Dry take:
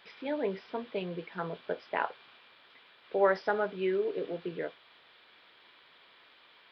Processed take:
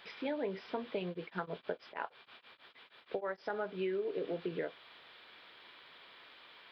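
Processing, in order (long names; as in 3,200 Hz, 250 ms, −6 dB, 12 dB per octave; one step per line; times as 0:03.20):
downward compressor 5 to 1, threshold −36 dBFS, peak gain reduction 14.5 dB
0:01.07–0:03.50: tremolo along a rectified sine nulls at 6.3 Hz
level +2.5 dB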